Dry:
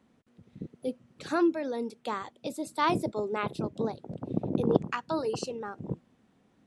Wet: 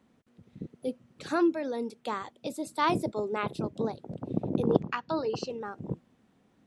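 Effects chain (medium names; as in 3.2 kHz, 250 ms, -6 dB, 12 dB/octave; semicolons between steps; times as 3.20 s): 4.80–5.50 s: low-pass 5.6 kHz 24 dB/octave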